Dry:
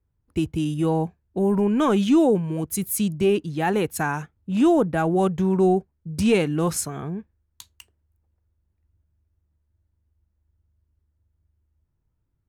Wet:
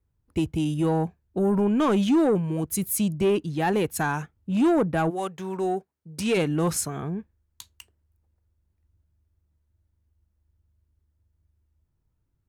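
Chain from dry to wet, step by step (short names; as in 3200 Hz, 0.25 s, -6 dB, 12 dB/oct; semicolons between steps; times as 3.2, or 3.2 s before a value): 5.09–6.36 HPF 1300 Hz -> 390 Hz 6 dB/oct; soft clip -15 dBFS, distortion -17 dB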